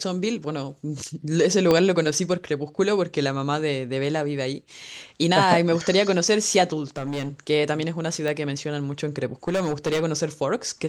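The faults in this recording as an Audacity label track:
1.710000	1.710000	pop -7 dBFS
6.960000	7.290000	clipped -24.5 dBFS
8.280000	8.280000	pop -15 dBFS
9.480000	10.040000	clipped -19.5 dBFS

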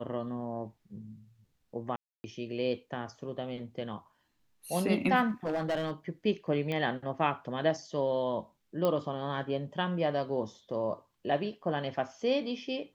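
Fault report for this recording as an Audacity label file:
1.960000	2.240000	gap 0.28 s
5.280000	5.910000	clipped -27 dBFS
6.720000	6.720000	pop -22 dBFS
8.850000	8.850000	pop -17 dBFS

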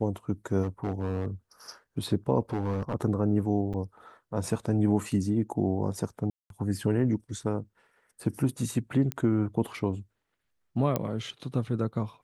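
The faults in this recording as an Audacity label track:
0.630000	1.280000	clipped -25 dBFS
2.530000	2.940000	clipped -25 dBFS
3.730000	3.740000	gap 6.7 ms
6.300000	6.500000	gap 0.202 s
9.120000	9.120000	pop -15 dBFS
10.960000	10.960000	pop -13 dBFS

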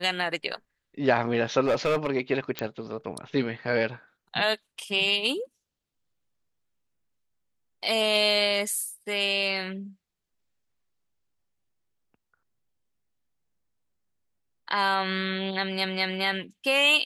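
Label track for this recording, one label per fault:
1.650000	2.090000	clipped -19 dBFS
2.590000	2.590000	pop -12 dBFS

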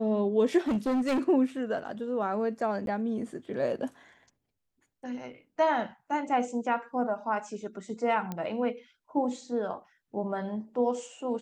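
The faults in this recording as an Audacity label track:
0.670000	1.200000	clipped -24 dBFS
2.860000	2.870000	gap 12 ms
8.320000	8.320000	pop -21 dBFS

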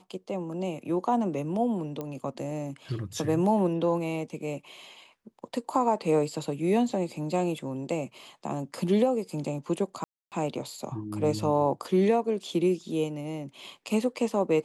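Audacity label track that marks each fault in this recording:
2.010000	2.010000	pop -21 dBFS
10.040000	10.320000	gap 0.278 s

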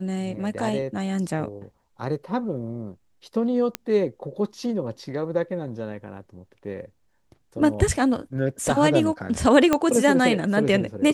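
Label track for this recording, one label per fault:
3.750000	3.750000	pop -9 dBFS
9.730000	9.730000	pop -6 dBFS

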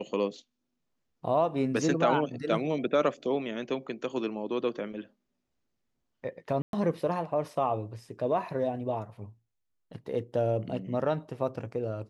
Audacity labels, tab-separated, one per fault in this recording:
6.620000	6.730000	gap 0.112 s

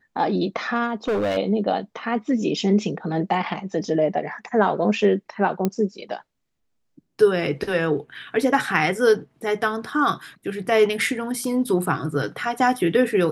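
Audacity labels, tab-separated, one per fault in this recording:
1.080000	1.380000	clipped -19 dBFS
5.650000	5.650000	pop -9 dBFS

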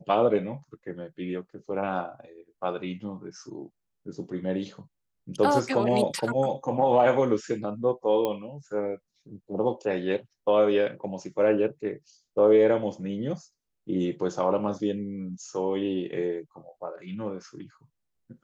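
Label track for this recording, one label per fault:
8.250000	8.250000	pop -15 dBFS

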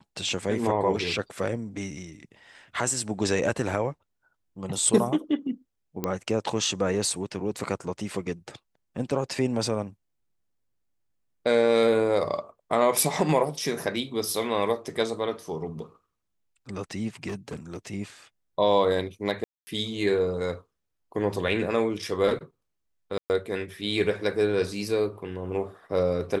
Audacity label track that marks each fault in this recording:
6.040000	6.040000	pop -13 dBFS
17.270000	17.770000	clipped -29.5 dBFS
19.440000	19.670000	gap 0.23 s
23.180000	23.300000	gap 0.119 s

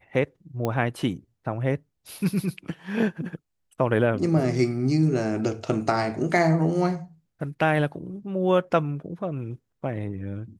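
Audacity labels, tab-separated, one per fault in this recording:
0.650000	0.650000	pop -14 dBFS

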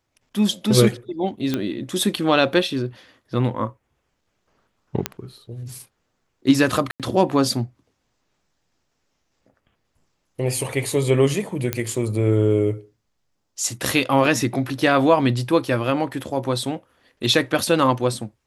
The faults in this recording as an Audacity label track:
1.540000	1.540000	pop -9 dBFS
5.060000	5.060000	pop -5 dBFS
6.910000	7.000000	gap 87 ms
11.730000	11.730000	pop -6 dBFS

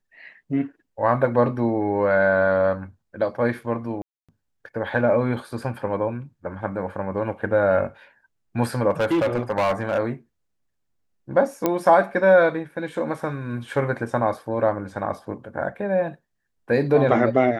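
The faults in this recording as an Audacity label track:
4.020000	4.290000	gap 0.266 s
8.900000	9.990000	clipped -17 dBFS
11.660000	11.660000	pop -7 dBFS

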